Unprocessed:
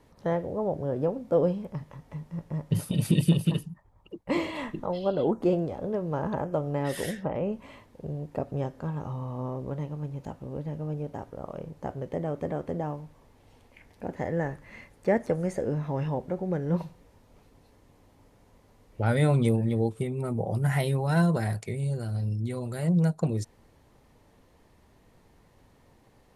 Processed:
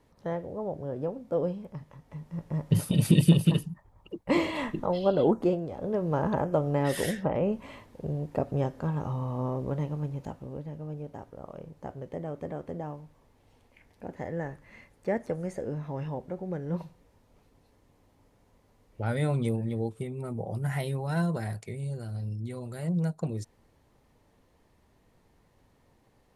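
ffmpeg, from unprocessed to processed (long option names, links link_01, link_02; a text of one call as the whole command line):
ffmpeg -i in.wav -af "volume=11dB,afade=type=in:start_time=2.05:duration=0.65:silence=0.421697,afade=type=out:start_time=5.33:duration=0.27:silence=0.375837,afade=type=in:start_time=5.6:duration=0.48:silence=0.375837,afade=type=out:start_time=9.96:duration=0.72:silence=0.421697" out.wav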